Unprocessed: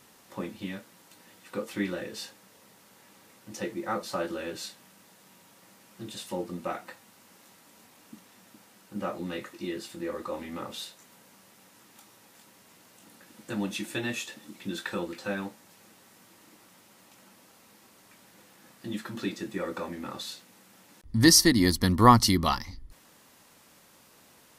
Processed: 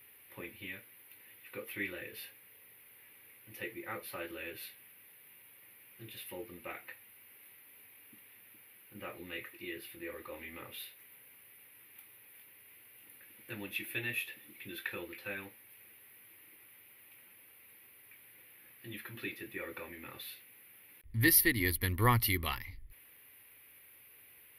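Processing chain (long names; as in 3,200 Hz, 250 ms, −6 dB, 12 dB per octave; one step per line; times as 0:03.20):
drawn EQ curve 120 Hz 0 dB, 180 Hz −14 dB, 430 Hz −2 dB, 640 Hz −10 dB, 1,300 Hz −6 dB, 2,300 Hz +10 dB, 7,700 Hz −25 dB, 11,000 Hz +12 dB
level −5.5 dB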